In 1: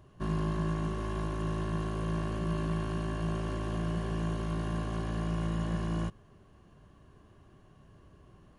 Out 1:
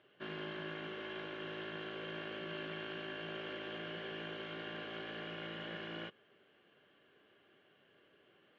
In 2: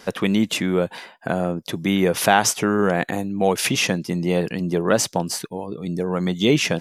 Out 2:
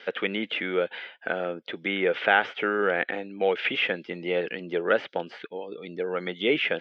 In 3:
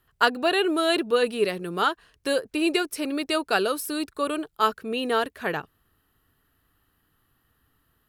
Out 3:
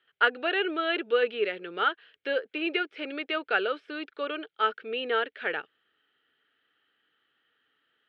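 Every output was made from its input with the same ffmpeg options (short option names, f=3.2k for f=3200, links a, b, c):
-filter_complex "[0:a]acrossover=split=2500[a][b];[b]acompressor=threshold=-44dB:ratio=4:attack=1:release=60[c];[a][c]amix=inputs=2:normalize=0,highpass=450,equalizer=f=470:t=q:w=4:g=3,equalizer=f=690:t=q:w=4:g=-5,equalizer=f=990:t=q:w=4:g=-9,equalizer=f=1.5k:t=q:w=4:g=4,equalizer=f=2.2k:t=q:w=4:g=6,equalizer=f=3.2k:t=q:w=4:g=9,lowpass=f=3.6k:w=0.5412,lowpass=f=3.6k:w=1.3066,bandreject=f=1.1k:w=11,volume=-2dB"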